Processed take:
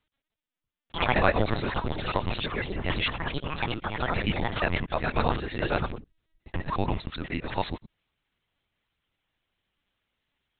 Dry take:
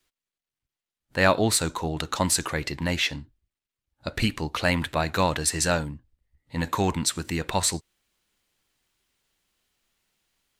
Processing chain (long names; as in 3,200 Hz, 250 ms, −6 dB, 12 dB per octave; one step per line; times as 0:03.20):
reversed piece by piece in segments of 77 ms
delay with pitch and tempo change per echo 152 ms, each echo +5 semitones, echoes 2
linear-prediction vocoder at 8 kHz pitch kept
level −2.5 dB